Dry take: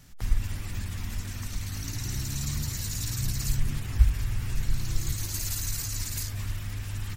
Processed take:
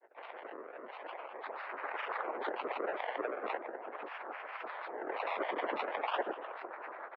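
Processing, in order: tilt +2.5 dB/oct; frequency-shifting echo 0.114 s, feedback 55%, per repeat +100 Hz, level -22 dB; companded quantiser 4-bit; on a send at -3.5 dB: reverb RT60 0.45 s, pre-delay 3 ms; on the sum: decimation with a swept rate 29×, swing 100% 0.4 Hz; mistuned SSB +60 Hz 450–2300 Hz; grains, pitch spread up and down by 7 st; gain -2 dB

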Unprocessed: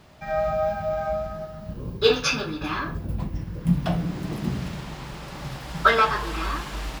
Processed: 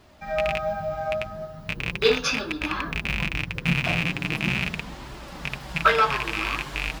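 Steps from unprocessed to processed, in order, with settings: rattling part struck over -29 dBFS, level -10 dBFS; flange 0.39 Hz, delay 2.8 ms, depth 5.9 ms, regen -33%; gain +2 dB

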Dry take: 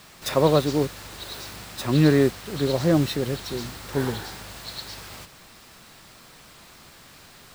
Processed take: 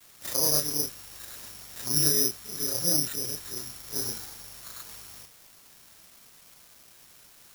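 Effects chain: short-time reversal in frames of 81 ms; careless resampling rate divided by 8×, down none, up zero stuff; bit-crush 6-bit; gain -12 dB

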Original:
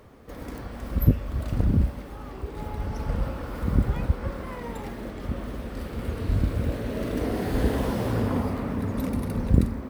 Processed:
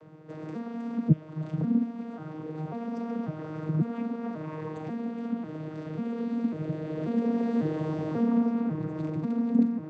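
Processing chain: arpeggiated vocoder bare fifth, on D#3, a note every 0.543 s; in parallel at +2 dB: compressor, threshold -39 dBFS, peak gain reduction 22.5 dB; on the sum: gain -1.5 dB

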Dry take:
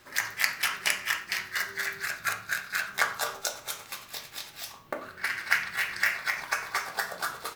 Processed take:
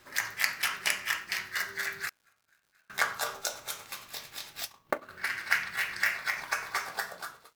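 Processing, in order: ending faded out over 0.64 s; 2.09–2.9 flipped gate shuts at -33 dBFS, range -36 dB; crackle 220/s -55 dBFS; 4.53–5.1 transient shaper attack +7 dB, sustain -12 dB; gain -2 dB

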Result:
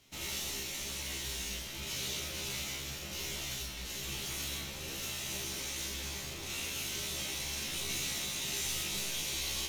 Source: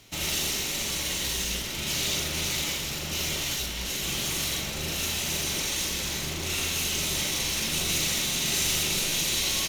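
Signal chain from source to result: resonator 67 Hz, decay 0.23 s, harmonics all, mix 100%; gain -3 dB

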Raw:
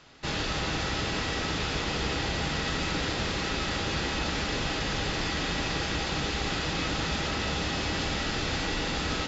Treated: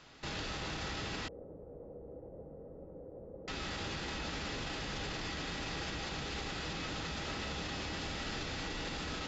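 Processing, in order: flange 1.2 Hz, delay 3.5 ms, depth 9.1 ms, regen -83%; limiter -32.5 dBFS, peak gain reduction 10.5 dB; 1.28–3.48 ladder low-pass 570 Hz, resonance 70%; gain +1.5 dB

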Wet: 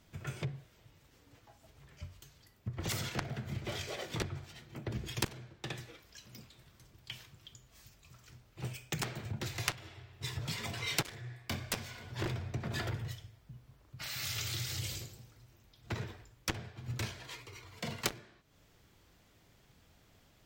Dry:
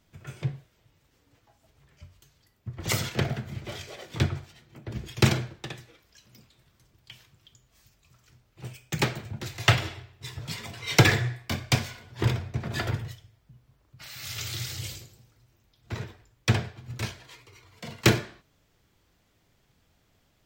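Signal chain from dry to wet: added harmonics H 3 -9 dB, 7 -35 dB, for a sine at -4.5 dBFS; compressor 5:1, threshold -52 dBFS, peak gain reduction 30.5 dB; gain +17 dB

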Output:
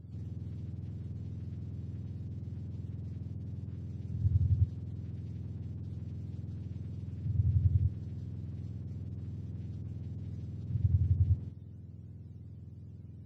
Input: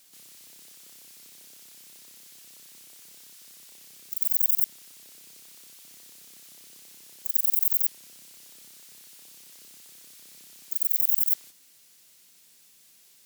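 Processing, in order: spectrum mirrored in octaves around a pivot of 990 Hz

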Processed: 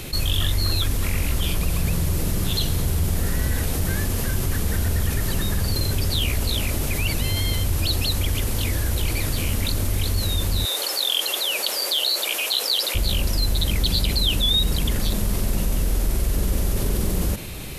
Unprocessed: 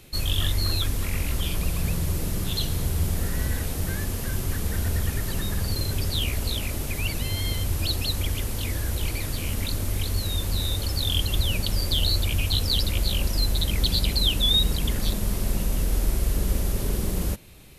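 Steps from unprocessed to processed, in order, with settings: 10.65–12.95 HPF 450 Hz 24 dB/oct; fast leveller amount 50%

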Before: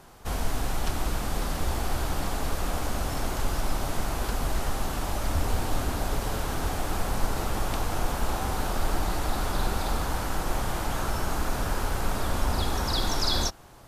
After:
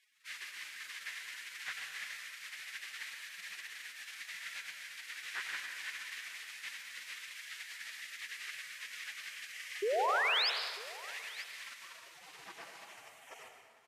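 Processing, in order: HPF 65 Hz 12 dB/oct; spectral gate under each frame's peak -25 dB weak; tone controls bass +13 dB, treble 0 dB; in parallel at -1 dB: limiter -40.5 dBFS, peak gain reduction 12 dB; on the sum: band-pass sweep 1800 Hz -> 760 Hz, 11.54–12.08; painted sound rise, 9.82–10.5, 380–5400 Hz -39 dBFS; echo 0.945 s -20.5 dB; on a send at -3.5 dB: reverb RT60 1.8 s, pre-delay 88 ms; on the sum: gain +7 dB

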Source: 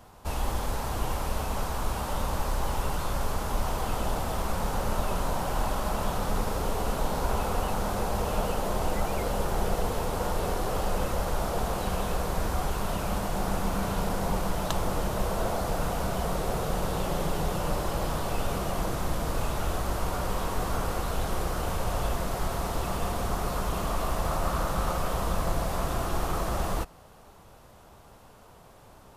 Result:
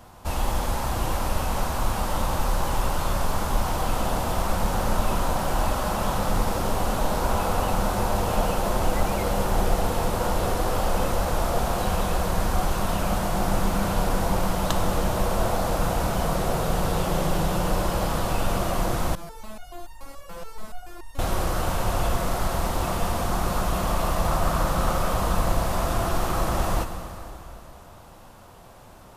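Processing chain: notch 430 Hz, Q 12; plate-style reverb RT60 3.1 s, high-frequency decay 0.9×, DRR 6.5 dB; 19.15–21.19 stepped resonator 7 Hz 170–920 Hz; gain +4 dB

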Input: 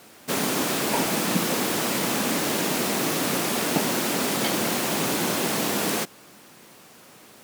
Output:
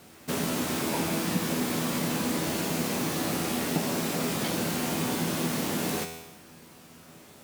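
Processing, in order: low shelf 190 Hz +12 dB; resonator 82 Hz, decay 0.9 s, harmonics all, mix 80%; in parallel at +1.5 dB: compressor, threshold -37 dBFS, peak gain reduction 12 dB

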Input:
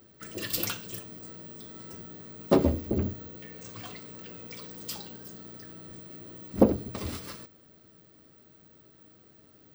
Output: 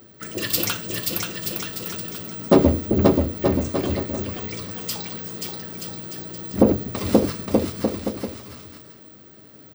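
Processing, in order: HPF 64 Hz; bouncing-ball echo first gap 0.53 s, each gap 0.75×, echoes 5; maximiser +9.5 dB; gain -1 dB

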